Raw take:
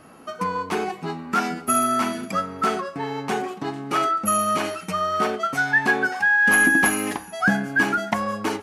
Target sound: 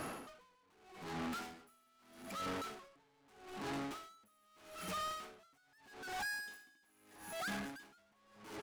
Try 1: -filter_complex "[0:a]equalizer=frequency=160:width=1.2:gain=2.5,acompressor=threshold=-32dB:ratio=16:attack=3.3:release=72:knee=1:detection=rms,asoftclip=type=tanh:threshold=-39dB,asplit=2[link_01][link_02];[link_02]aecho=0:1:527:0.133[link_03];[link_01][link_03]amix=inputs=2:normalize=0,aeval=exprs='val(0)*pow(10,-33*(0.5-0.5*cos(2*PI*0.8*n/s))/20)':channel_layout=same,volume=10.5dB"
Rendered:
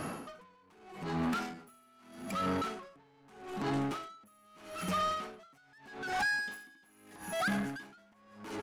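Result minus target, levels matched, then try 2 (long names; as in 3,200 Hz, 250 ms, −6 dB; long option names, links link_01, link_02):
125 Hz band +3.5 dB; soft clipping: distortion −5 dB
-filter_complex "[0:a]equalizer=frequency=160:width=1.2:gain=-4.5,acompressor=threshold=-32dB:ratio=16:attack=3.3:release=72:knee=1:detection=rms,asoftclip=type=tanh:threshold=-49.5dB,asplit=2[link_01][link_02];[link_02]aecho=0:1:527:0.133[link_03];[link_01][link_03]amix=inputs=2:normalize=0,aeval=exprs='val(0)*pow(10,-33*(0.5-0.5*cos(2*PI*0.8*n/s))/20)':channel_layout=same,volume=10.5dB"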